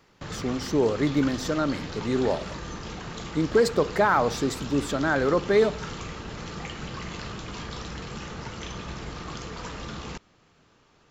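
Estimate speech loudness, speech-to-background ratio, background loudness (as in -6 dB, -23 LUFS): -25.0 LUFS, 11.5 dB, -36.5 LUFS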